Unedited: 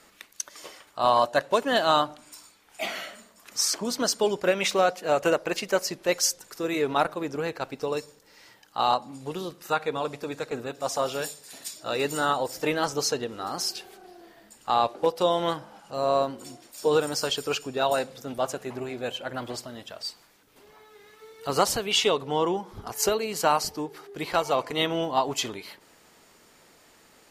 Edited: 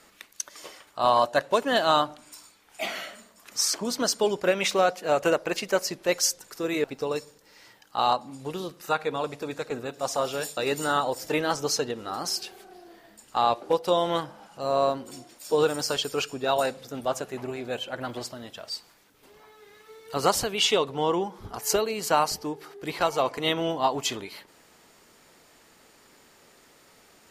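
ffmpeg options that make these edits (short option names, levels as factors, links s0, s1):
-filter_complex "[0:a]asplit=3[s0][s1][s2];[s0]atrim=end=6.842[s3];[s1]atrim=start=7.648:end=11.382[s4];[s2]atrim=start=11.898[s5];[s3][s4]acrossfade=d=0.004:c1=hsin:c2=hsin[s6];[s6][s5]acrossfade=d=0.004:c1=hsin:c2=hsin"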